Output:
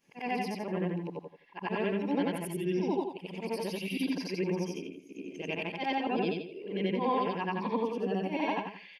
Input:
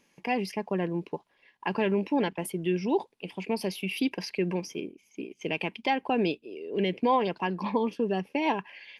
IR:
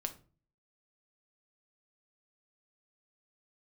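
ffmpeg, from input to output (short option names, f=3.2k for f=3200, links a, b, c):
-filter_complex "[0:a]afftfilt=real='re':imag='-im':win_size=8192:overlap=0.75,asplit=2[a][b];[b]adelay=82,lowpass=f=3.3k:p=1,volume=-6dB,asplit=2[c][d];[d]adelay=82,lowpass=f=3.3k:p=1,volume=0.24,asplit=2[e][f];[f]adelay=82,lowpass=f=3.3k:p=1,volume=0.24[g];[c][e][g]amix=inputs=3:normalize=0[h];[a][h]amix=inputs=2:normalize=0"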